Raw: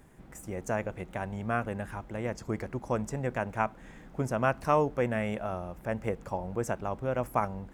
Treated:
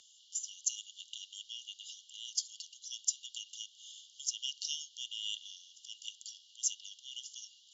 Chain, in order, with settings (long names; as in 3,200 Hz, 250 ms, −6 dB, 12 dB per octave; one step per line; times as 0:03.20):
linear-phase brick-wall band-pass 2,800–7,400 Hz
frequency shifter +13 Hz
level +16 dB